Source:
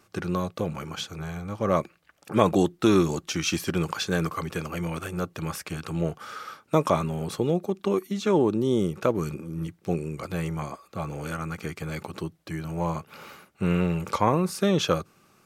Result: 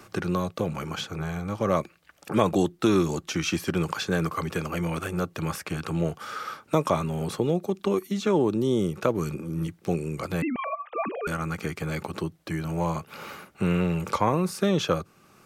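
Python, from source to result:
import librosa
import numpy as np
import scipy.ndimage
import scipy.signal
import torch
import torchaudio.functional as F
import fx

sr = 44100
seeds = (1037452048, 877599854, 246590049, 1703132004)

y = fx.sine_speech(x, sr, at=(10.42, 11.27))
y = fx.band_squash(y, sr, depth_pct=40)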